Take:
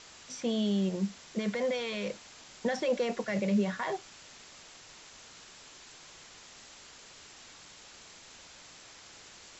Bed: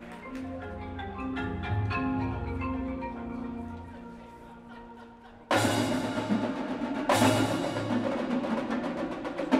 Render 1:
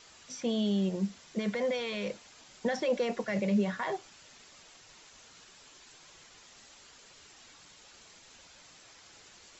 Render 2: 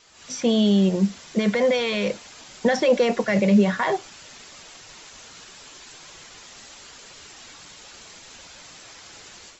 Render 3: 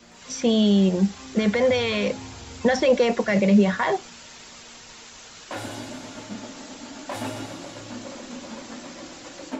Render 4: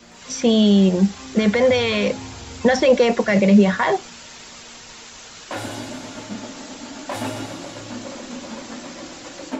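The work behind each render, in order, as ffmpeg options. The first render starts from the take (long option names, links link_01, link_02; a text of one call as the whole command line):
ffmpeg -i in.wav -af "afftdn=noise_reduction=6:noise_floor=-53" out.wav
ffmpeg -i in.wav -af "dynaudnorm=framelen=130:gausssize=3:maxgain=11dB" out.wav
ffmpeg -i in.wav -i bed.wav -filter_complex "[1:a]volume=-8.5dB[link_01];[0:a][link_01]amix=inputs=2:normalize=0" out.wav
ffmpeg -i in.wav -af "volume=4dB" out.wav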